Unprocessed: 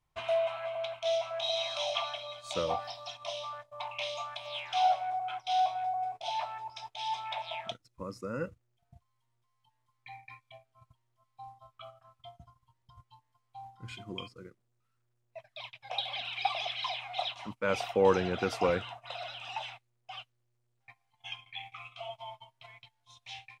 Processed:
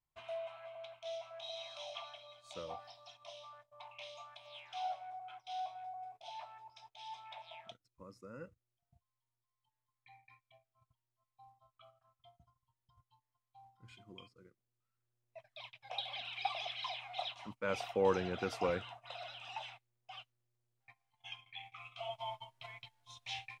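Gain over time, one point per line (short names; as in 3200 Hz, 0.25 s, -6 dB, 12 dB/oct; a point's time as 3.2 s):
14.34 s -13.5 dB
15.43 s -6.5 dB
21.73 s -6.5 dB
22.27 s +2 dB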